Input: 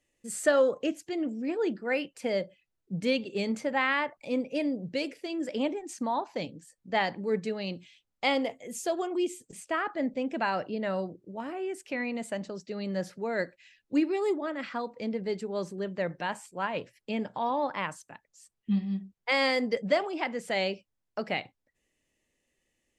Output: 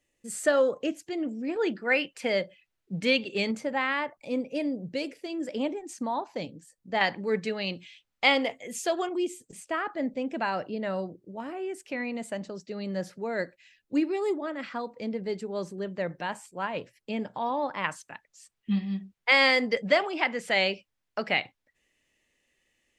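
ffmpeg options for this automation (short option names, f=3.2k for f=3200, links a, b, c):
-af "asetnsamples=n=441:p=0,asendcmd='1.56 equalizer g 8;3.51 equalizer g -1.5;7.01 equalizer g 7.5;9.09 equalizer g -0.5;17.84 equalizer g 7.5',equalizer=f=2.3k:t=o:w=2.6:g=0.5"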